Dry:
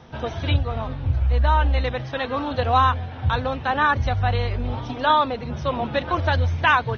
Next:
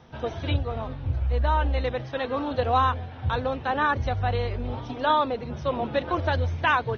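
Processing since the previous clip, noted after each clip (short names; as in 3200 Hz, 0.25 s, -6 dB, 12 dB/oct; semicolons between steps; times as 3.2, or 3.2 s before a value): dynamic EQ 410 Hz, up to +6 dB, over -35 dBFS, Q 0.99; gain -5.5 dB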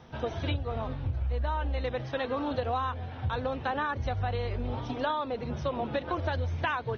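compressor, threshold -27 dBFS, peak gain reduction 10.5 dB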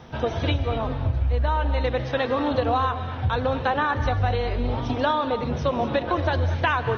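non-linear reverb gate 0.27 s rising, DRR 10 dB; gain +7.5 dB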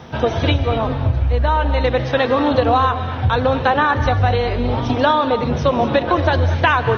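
HPF 61 Hz; gain +7.5 dB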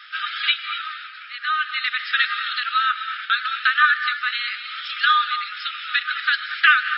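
FFT band-pass 1200–5400 Hz; gain +4.5 dB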